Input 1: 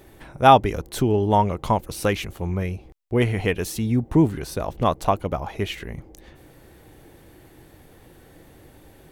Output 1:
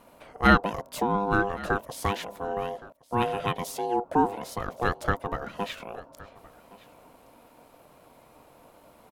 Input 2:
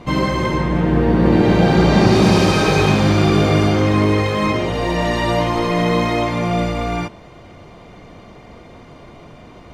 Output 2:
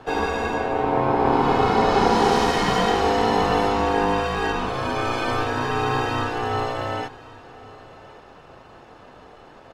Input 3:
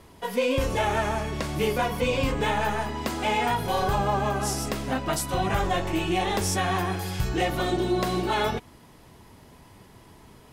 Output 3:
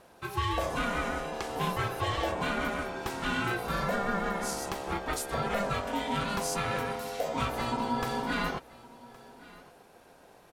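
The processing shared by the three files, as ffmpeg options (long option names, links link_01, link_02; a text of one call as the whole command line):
ffmpeg -i in.wav -af "aeval=exprs='val(0)*sin(2*PI*600*n/s)':channel_layout=same,aecho=1:1:1117:0.0891,volume=-3dB" out.wav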